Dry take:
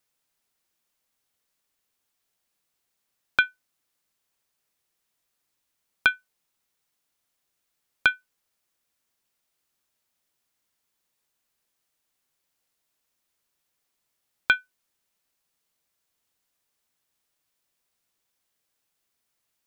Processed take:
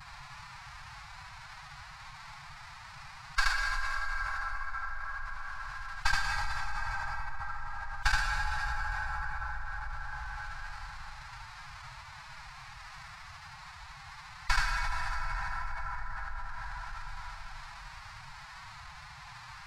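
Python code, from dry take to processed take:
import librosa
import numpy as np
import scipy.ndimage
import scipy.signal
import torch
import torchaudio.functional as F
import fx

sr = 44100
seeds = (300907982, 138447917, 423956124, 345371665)

y = fx.tracing_dist(x, sr, depth_ms=0.25)
y = fx.sample_hold(y, sr, seeds[0], rate_hz=3200.0, jitter_pct=20)
y = scipy.signal.sosfilt(scipy.signal.butter(2, 4200.0, 'lowpass', fs=sr, output='sos'), y)
y = y + 10.0 ** (-4.0 / 20.0) * np.pad(y, (int(76 * sr / 1000.0), 0))[:len(y)]
y = fx.pitch_keep_formants(y, sr, semitones=7.0)
y = fx.high_shelf(y, sr, hz=3200.0, db=8.5)
y = fx.vibrato(y, sr, rate_hz=0.4, depth_cents=16.0)
y = scipy.signal.sosfilt(scipy.signal.cheby1(3, 1.0, [140.0, 860.0], 'bandstop', fs=sr, output='sos'), y)
y = fx.low_shelf(y, sr, hz=64.0, db=7.0)
y = fx.rev_plate(y, sr, seeds[1], rt60_s=4.4, hf_ratio=0.5, predelay_ms=0, drr_db=13.5)
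y = fx.env_flatten(y, sr, amount_pct=70)
y = F.gain(torch.from_numpy(y), -9.0).numpy()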